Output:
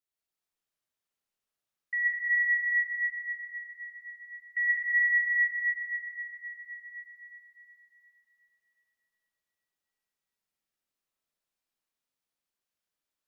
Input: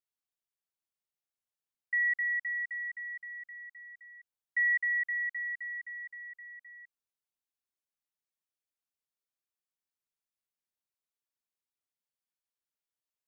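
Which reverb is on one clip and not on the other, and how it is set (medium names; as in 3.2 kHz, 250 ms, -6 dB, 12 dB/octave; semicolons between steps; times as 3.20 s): algorithmic reverb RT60 3.8 s, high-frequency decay 0.7×, pre-delay 80 ms, DRR -6.5 dB; trim -1.5 dB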